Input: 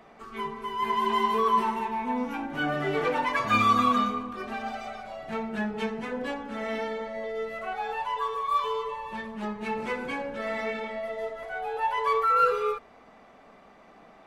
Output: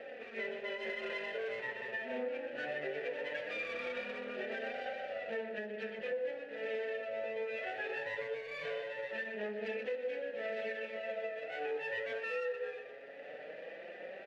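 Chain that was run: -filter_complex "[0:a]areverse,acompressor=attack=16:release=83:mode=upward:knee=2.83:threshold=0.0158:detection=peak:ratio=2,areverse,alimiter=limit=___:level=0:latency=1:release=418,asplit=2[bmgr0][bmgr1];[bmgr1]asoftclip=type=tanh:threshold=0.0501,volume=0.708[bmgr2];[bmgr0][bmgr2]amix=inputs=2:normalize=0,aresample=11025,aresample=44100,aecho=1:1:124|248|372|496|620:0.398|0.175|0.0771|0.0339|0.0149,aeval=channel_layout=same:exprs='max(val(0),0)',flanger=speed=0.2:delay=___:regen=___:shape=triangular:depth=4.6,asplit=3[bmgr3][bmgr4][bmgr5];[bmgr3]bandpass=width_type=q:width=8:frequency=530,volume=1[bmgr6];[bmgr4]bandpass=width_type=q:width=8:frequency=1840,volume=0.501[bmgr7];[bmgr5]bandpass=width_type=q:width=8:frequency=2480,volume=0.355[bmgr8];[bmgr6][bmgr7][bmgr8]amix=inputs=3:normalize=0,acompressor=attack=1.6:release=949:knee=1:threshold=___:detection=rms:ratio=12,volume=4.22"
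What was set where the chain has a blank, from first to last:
0.178, 3.7, 30, 0.00631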